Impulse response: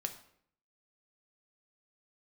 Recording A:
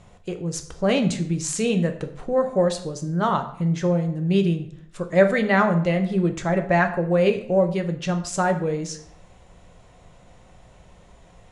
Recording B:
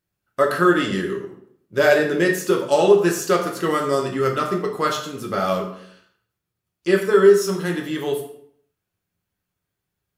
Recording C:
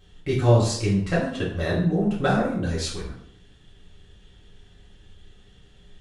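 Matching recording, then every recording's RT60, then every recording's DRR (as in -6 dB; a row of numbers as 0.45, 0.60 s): A; 0.65, 0.65, 0.65 s; 6.0, 0.5, -8.0 dB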